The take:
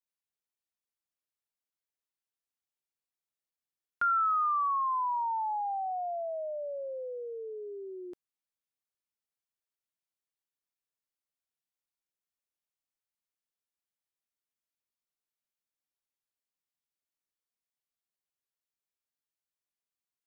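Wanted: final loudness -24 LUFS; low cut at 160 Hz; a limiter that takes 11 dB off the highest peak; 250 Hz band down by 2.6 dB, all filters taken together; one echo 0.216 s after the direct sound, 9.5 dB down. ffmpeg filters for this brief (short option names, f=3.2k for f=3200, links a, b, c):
-af "highpass=160,equalizer=f=250:t=o:g=-5.5,alimiter=level_in=9.5dB:limit=-24dB:level=0:latency=1,volume=-9.5dB,aecho=1:1:216:0.335,volume=13.5dB"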